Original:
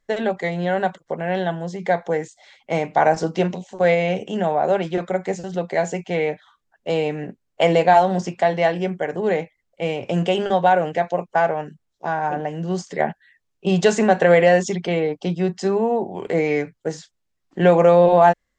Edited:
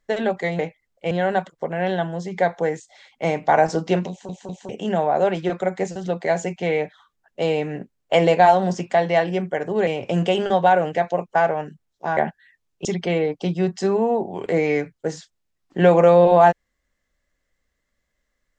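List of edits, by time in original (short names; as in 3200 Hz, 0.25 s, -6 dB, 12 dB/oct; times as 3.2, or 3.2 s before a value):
3.57 stutter in place 0.20 s, 3 plays
9.35–9.87 move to 0.59
12.17–12.99 cut
13.67–14.66 cut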